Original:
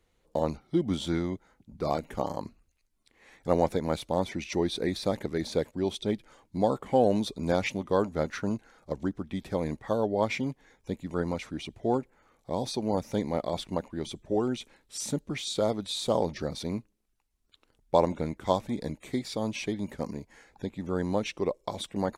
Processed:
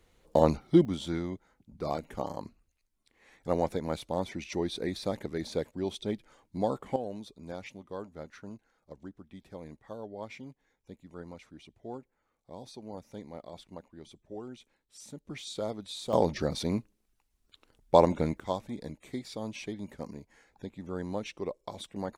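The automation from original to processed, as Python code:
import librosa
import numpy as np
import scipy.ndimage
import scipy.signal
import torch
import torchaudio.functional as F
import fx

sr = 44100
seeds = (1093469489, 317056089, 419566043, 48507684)

y = fx.gain(x, sr, db=fx.steps((0.0, 5.5), (0.85, -4.0), (6.96, -14.5), (15.25, -7.5), (16.13, 2.5), (18.4, -6.5)))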